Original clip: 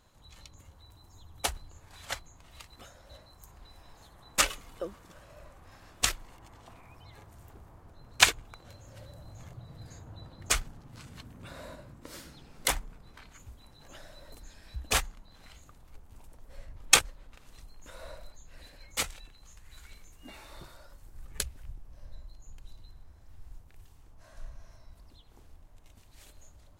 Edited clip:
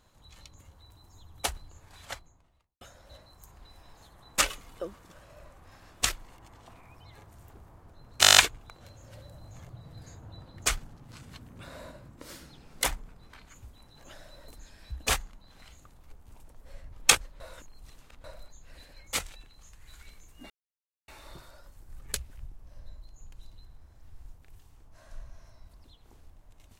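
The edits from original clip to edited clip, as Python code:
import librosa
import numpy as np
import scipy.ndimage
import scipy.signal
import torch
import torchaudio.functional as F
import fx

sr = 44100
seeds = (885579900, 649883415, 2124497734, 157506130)

y = fx.studio_fade_out(x, sr, start_s=1.85, length_s=0.96)
y = fx.edit(y, sr, fx.stutter(start_s=8.21, slice_s=0.02, count=9),
    fx.reverse_span(start_s=17.24, length_s=0.84),
    fx.insert_silence(at_s=20.34, length_s=0.58), tone=tone)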